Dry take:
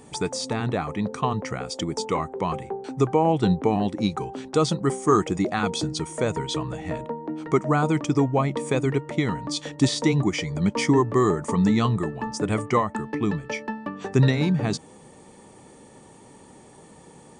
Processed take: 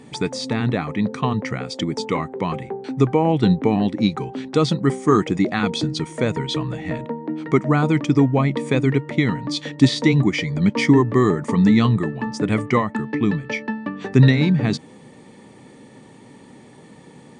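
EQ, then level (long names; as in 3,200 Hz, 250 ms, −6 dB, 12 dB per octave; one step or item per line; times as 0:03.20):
graphic EQ with 10 bands 125 Hz +10 dB, 250 Hz +11 dB, 500 Hz +5 dB, 1,000 Hz +3 dB, 2,000 Hz +11 dB, 4,000 Hz +9 dB
−6.5 dB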